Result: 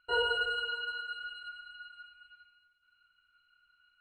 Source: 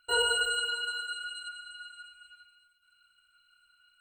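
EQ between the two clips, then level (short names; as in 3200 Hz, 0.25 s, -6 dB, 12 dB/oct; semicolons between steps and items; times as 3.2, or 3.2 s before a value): LPF 2900 Hz 6 dB/oct; air absorption 150 m; 0.0 dB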